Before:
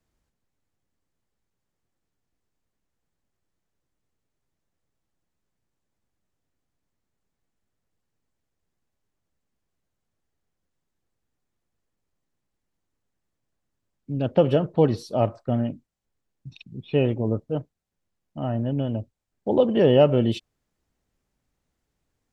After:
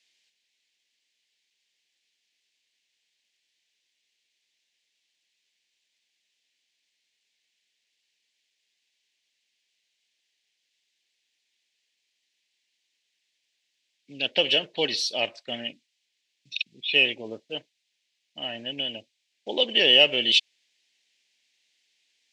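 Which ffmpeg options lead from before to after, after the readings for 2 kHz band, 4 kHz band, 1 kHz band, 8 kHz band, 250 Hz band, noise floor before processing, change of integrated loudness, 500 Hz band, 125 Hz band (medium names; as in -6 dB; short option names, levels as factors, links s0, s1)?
+15.0 dB, +19.0 dB, -7.5 dB, no reading, -13.5 dB, -81 dBFS, +0.5 dB, -8.0 dB, -24.0 dB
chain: -af "aexciter=amount=14.5:drive=9.5:freq=2100,highpass=360,lowpass=3200,volume=0.447"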